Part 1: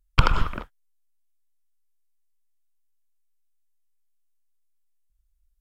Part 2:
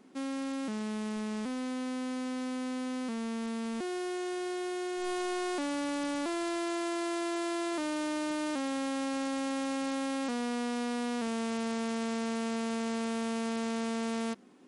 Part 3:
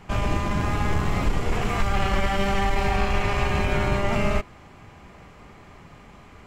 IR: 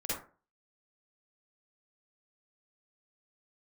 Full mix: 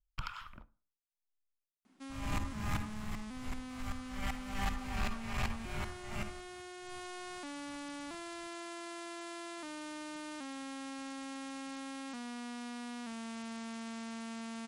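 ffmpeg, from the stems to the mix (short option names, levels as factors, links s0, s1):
-filter_complex "[0:a]acrossover=split=890[s0][s1];[s0]aeval=exprs='val(0)*(1-1/2+1/2*cos(2*PI*1.4*n/s))':c=same[s2];[s1]aeval=exprs='val(0)*(1-1/2-1/2*cos(2*PI*1.4*n/s))':c=same[s3];[s2][s3]amix=inputs=2:normalize=0,volume=0.211,asplit=2[s4][s5];[s5]volume=0.0668[s6];[1:a]adelay=1850,volume=0.447[s7];[2:a]highshelf=f=7700:g=11,aeval=exprs='val(0)*pow(10,-34*if(lt(mod(-2.6*n/s,1),2*abs(-2.6)/1000),1-mod(-2.6*n/s,1)/(2*abs(-2.6)/1000),(mod(-2.6*n/s,1)-2*abs(-2.6)/1000)/(1-2*abs(-2.6)/1000))/20)':c=same,adelay=2000,volume=2.24,afade=t=out:st=2.81:d=0.26:silence=0.316228,afade=t=in:st=3.99:d=0.67:silence=0.334965,afade=t=out:st=5.47:d=0.36:silence=0.446684,asplit=2[s8][s9];[s9]volume=0.237[s10];[3:a]atrim=start_sample=2205[s11];[s6][s10]amix=inputs=2:normalize=0[s12];[s12][s11]afir=irnorm=-1:irlink=0[s13];[s4][s7][s8][s13]amix=inputs=4:normalize=0,asoftclip=type=tanh:threshold=0.0422,equalizer=f=440:w=1.6:g=-12"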